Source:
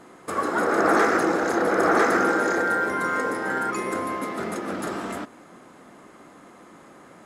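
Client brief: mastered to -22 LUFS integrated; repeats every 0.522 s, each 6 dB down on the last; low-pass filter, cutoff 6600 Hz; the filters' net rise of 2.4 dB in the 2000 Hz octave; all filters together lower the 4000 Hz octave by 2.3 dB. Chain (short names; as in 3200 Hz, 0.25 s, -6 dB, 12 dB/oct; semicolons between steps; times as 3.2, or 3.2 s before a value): LPF 6600 Hz; bell 2000 Hz +4 dB; bell 4000 Hz -3.5 dB; feedback echo 0.522 s, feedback 50%, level -6 dB; gain -1 dB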